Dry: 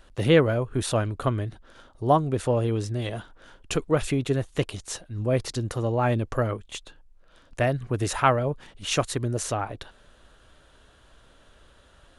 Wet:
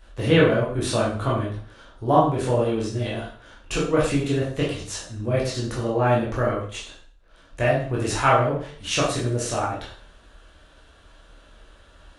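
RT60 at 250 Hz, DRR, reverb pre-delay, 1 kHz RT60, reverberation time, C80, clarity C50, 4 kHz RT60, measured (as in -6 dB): 0.45 s, -6.5 dB, 7 ms, 0.50 s, 0.50 s, 8.5 dB, 4.0 dB, 0.45 s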